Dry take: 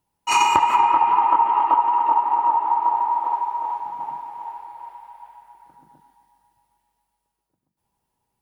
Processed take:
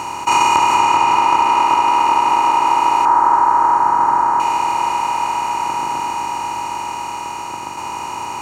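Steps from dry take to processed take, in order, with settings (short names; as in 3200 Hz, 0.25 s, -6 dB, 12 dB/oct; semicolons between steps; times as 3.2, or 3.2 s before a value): per-bin compression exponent 0.2; 3.05–4.4 resonant high shelf 2000 Hz -8.5 dB, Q 3; gain -1.5 dB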